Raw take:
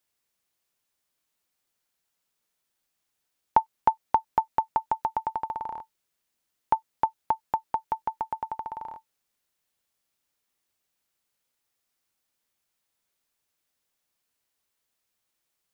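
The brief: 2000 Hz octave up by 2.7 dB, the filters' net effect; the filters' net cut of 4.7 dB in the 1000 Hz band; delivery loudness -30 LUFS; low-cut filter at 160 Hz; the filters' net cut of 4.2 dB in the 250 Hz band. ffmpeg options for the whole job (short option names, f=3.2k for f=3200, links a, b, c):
-af "highpass=160,equalizer=f=250:t=o:g=-4.5,equalizer=f=1k:t=o:g=-6,equalizer=f=2k:t=o:g=6,volume=4.5dB"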